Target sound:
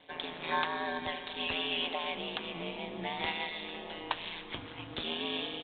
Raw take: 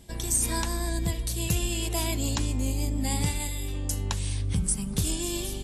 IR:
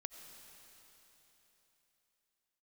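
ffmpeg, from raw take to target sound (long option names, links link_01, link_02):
-filter_complex "[0:a]highpass=560,asettb=1/sr,asplit=3[link_01][link_02][link_03];[link_01]atrim=end=1.864[link_04];[link_02]atrim=start=1.86:end=3.2,asetpts=PTS-STARTPTS,afade=type=in:duration=0.004:curve=qsin,afade=type=out:start_time=1.336:duration=0.004:curve=qsin,acompressor=threshold=-33dB:ratio=6[link_05];[link_03]atrim=start=3.196[link_06];[link_04][link_05]acrossfade=duration=0.004:curve1=hsin:curve2=qsin[link_07];[link_07][link_06]acrossfade=duration=0.004:curve1=qsin:curve2=hsin,aeval=exprs='val(0)*sin(2*PI*82*n/s)':channel_layout=same,aresample=8000,aresample=44100,asplit=2[link_08][link_09];[1:a]atrim=start_sample=2205[link_10];[link_09][link_10]afir=irnorm=-1:irlink=0,volume=5.5dB[link_11];[link_08][link_11]amix=inputs=2:normalize=0"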